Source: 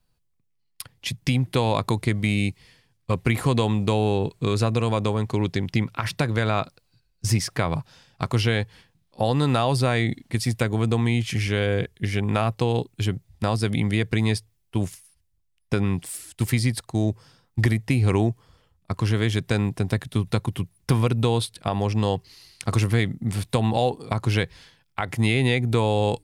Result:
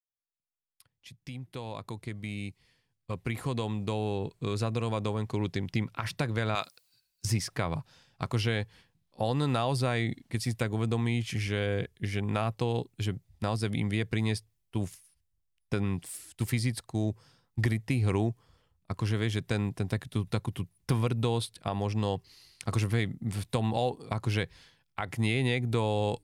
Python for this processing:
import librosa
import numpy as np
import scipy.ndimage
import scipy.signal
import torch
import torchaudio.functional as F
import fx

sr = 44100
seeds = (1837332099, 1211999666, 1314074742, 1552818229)

y = fx.fade_in_head(x, sr, length_s=5.47)
y = fx.tilt_eq(y, sr, slope=4.0, at=(6.55, 7.25))
y = y * librosa.db_to_amplitude(-7.0)